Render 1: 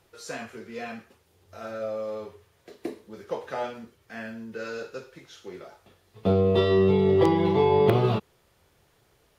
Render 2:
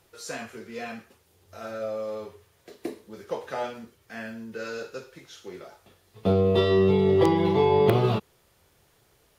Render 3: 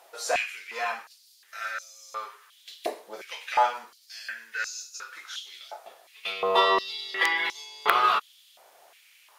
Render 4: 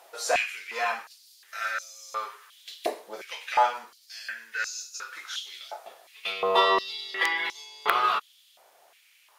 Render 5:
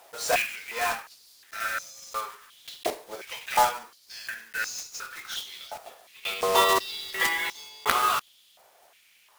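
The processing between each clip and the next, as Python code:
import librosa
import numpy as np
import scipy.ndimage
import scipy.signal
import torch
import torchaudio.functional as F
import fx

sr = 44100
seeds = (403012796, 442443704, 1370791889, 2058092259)

y1 = fx.high_shelf(x, sr, hz=5600.0, db=5.5)
y2 = fx.filter_held_highpass(y1, sr, hz=2.8, low_hz=690.0, high_hz=6200.0)
y2 = y2 * librosa.db_to_amplitude(5.5)
y3 = fx.rider(y2, sr, range_db=3, speed_s=2.0)
y4 = fx.block_float(y3, sr, bits=3)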